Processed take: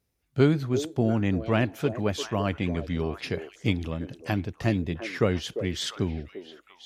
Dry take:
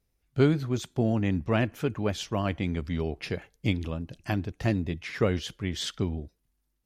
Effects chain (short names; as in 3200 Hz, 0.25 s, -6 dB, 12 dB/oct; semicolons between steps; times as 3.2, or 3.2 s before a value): HPF 67 Hz; on a send: delay with a stepping band-pass 0.347 s, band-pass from 460 Hz, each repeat 1.4 oct, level -7 dB; on the sum: gain +1.5 dB